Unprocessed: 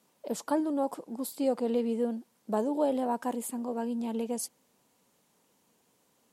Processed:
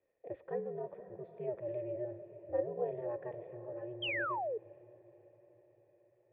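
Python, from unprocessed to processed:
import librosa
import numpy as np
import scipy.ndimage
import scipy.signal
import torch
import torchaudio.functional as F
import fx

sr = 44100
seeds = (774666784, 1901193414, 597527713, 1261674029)

p1 = x * np.sin(2.0 * np.pi * 120.0 * np.arange(len(x)) / sr)
p2 = fx.formant_cascade(p1, sr, vowel='e')
p3 = p2 + fx.echo_diffused(p2, sr, ms=521, feedback_pct=55, wet_db=-14.0, dry=0)
p4 = fx.rev_schroeder(p3, sr, rt60_s=3.1, comb_ms=31, drr_db=17.0)
p5 = fx.spec_paint(p4, sr, seeds[0], shape='fall', start_s=4.02, length_s=0.56, low_hz=410.0, high_hz=3300.0, level_db=-41.0)
y = F.gain(torch.from_numpy(p5), 4.5).numpy()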